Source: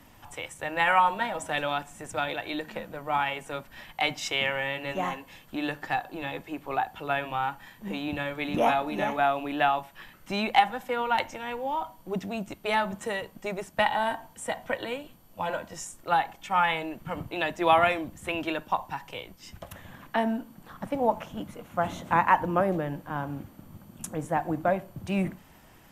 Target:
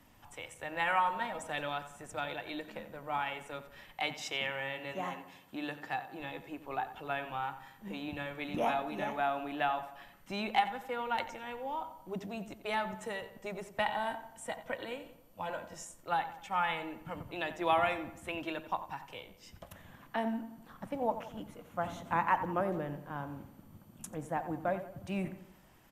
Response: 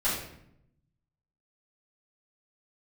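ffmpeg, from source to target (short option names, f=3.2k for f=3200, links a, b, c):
-filter_complex "[0:a]asettb=1/sr,asplit=3[a][b][c];[a]atrim=end=4.024[d];[b]atrim=start=4.02:end=6.2,asetpts=PTS-STARTPTS,afade=t=in:d=0.004:c=qsin,afade=t=out:st=2.176:d=0.004:c=qsin,highpass=99[e];[c]atrim=start=6.196[f];[d][e]acrossfade=d=0.004:c1=hsin:c2=qsin[g];[g][f]acrossfade=d=0.004:c1=qsin:c2=hsin,asplit=2[h][i];[i]adelay=89,lowpass=f=2.8k:p=1,volume=-12dB,asplit=2[j][k];[k]adelay=89,lowpass=f=2.8k:p=1,volume=0.5,asplit=2[l][m];[m]adelay=89,lowpass=f=2.8k:p=1,volume=0.5,asplit=2[n][o];[o]adelay=89,lowpass=f=2.8k:p=1,volume=0.5,asplit=2[p][q];[q]adelay=89,lowpass=f=2.8k:p=1,volume=0.5[r];[h][j][l][n][p][r]amix=inputs=6:normalize=0,volume=-8dB"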